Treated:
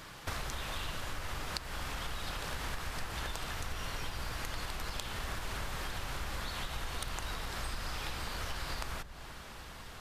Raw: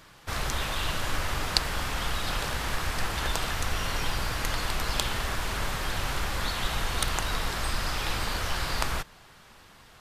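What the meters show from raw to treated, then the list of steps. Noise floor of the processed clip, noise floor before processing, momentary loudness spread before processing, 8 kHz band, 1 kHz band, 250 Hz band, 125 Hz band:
-49 dBFS, -53 dBFS, 2 LU, -9.5 dB, -9.0 dB, -9.0 dB, -8.5 dB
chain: compression 10:1, threshold -39 dBFS, peak gain reduction 22 dB; on a send: filtered feedback delay 484 ms, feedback 79%, low-pass 880 Hz, level -14.5 dB; on the sum: trim +4 dB

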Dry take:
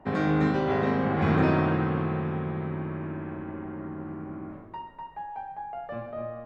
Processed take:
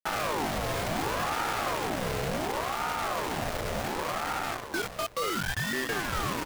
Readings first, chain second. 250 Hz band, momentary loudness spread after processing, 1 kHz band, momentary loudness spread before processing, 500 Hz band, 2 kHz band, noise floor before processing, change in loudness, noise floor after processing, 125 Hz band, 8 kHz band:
-9.0 dB, 3 LU, +2.0 dB, 16 LU, -2.0 dB, +4.0 dB, -46 dBFS, -2.0 dB, -41 dBFS, -8.5 dB, no reading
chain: compression 16:1, threshold -34 dBFS, peak gain reduction 17 dB; companded quantiser 2-bit; on a send: feedback delay 482 ms, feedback 26%, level -9.5 dB; on the sum: ring modulator with a swept carrier 680 Hz, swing 60%, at 0.69 Hz; trim +1 dB

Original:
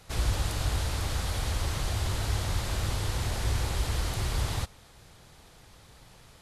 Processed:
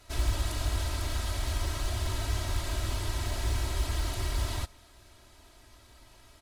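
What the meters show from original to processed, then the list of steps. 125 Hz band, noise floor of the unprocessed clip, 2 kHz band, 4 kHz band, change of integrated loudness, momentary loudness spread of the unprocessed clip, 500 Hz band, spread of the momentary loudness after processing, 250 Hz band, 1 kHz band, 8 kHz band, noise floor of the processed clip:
-2.5 dB, -55 dBFS, -2.0 dB, -2.0 dB, -2.0 dB, 1 LU, -2.0 dB, 2 LU, -2.5 dB, -2.5 dB, -2.0 dB, -57 dBFS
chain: comb 3.1 ms, depth 90%; in parallel at -6 dB: short-mantissa float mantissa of 2-bit; on the sum: trim -8 dB

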